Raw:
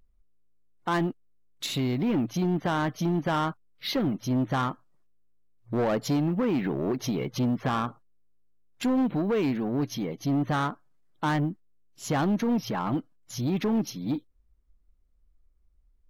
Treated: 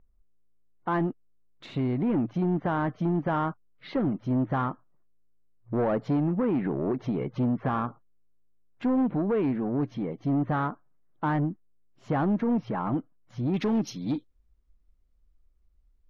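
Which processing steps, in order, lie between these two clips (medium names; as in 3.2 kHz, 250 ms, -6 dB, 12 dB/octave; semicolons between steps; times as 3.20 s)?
low-pass 1.6 kHz 12 dB/octave, from 13.54 s 6.3 kHz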